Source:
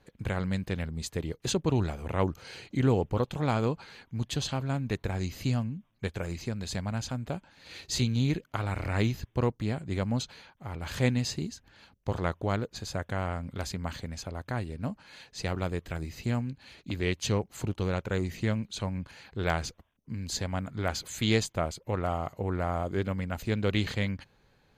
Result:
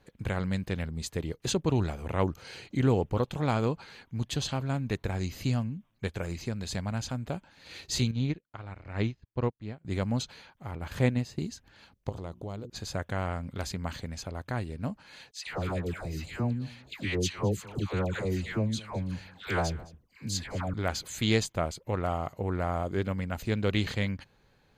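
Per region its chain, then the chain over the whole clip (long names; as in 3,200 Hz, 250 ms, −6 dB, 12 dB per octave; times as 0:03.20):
0:08.11–0:09.85: high-frequency loss of the air 120 metres + expander for the loud parts 2.5 to 1, over −41 dBFS
0:10.71–0:11.39: parametric band 5,500 Hz −6.5 dB 2.3 octaves + transient designer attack +2 dB, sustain −8 dB
0:12.09–0:12.70: parametric band 1,700 Hz −12 dB 1.1 octaves + mains-hum notches 60/120/180/240/300/360 Hz + downward compressor 2.5 to 1, threshold −37 dBFS
0:15.31–0:20.74: all-pass dispersion lows, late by 145 ms, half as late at 960 Hz + single-tap delay 213 ms −21 dB
whole clip: no processing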